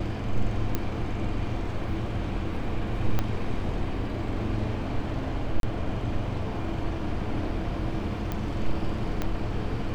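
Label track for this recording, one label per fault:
0.750000	0.750000	pop -12 dBFS
3.190000	3.190000	pop -12 dBFS
5.600000	5.630000	dropout 32 ms
8.320000	8.320000	pop -17 dBFS
9.220000	9.220000	pop -14 dBFS

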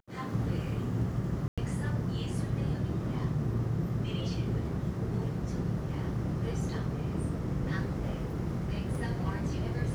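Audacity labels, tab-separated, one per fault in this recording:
1.480000	1.580000	dropout 96 ms

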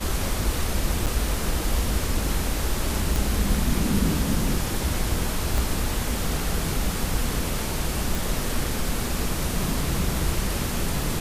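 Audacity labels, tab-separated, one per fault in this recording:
1.060000	1.070000	dropout 7.3 ms
3.160000	3.160000	pop
5.580000	5.580000	pop
8.150000	8.150000	pop

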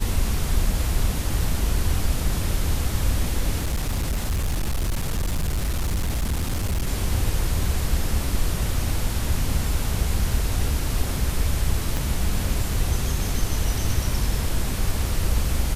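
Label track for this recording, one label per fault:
3.600000	6.880000	clipped -20 dBFS
11.970000	11.970000	pop -11 dBFS

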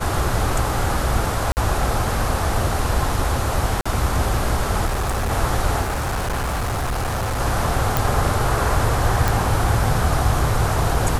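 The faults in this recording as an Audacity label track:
1.520000	1.570000	dropout 49 ms
3.810000	3.850000	dropout 45 ms
4.850000	5.320000	clipped -18.5 dBFS
5.810000	7.410000	clipped -20 dBFS
7.970000	7.970000	pop
9.280000	9.280000	pop

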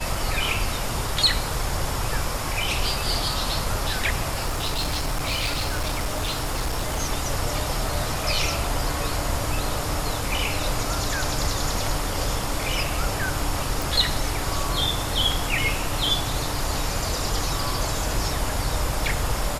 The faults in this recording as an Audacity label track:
4.330000	7.010000	clipped -21 dBFS
13.820000	13.820000	pop

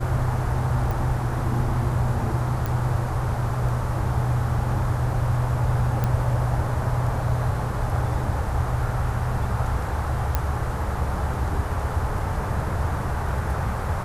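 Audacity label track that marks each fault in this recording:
0.910000	0.910000	pop
2.660000	2.660000	pop
6.040000	6.040000	pop -12 dBFS
10.350000	10.350000	pop -8 dBFS

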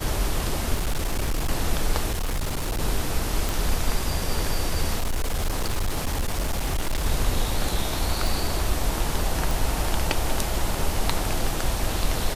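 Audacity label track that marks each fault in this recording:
0.740000	1.490000	clipped -20.5 dBFS
2.110000	2.810000	clipped -22.5 dBFS
3.490000	3.490000	pop
4.980000	7.060000	clipped -20.5 dBFS
8.270000	8.270000	pop
9.510000	9.510000	pop

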